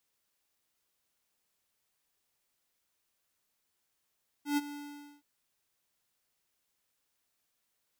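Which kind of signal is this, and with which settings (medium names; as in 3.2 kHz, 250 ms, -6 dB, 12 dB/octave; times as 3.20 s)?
ADSR square 290 Hz, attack 123 ms, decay 30 ms, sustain -15 dB, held 0.28 s, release 492 ms -27.5 dBFS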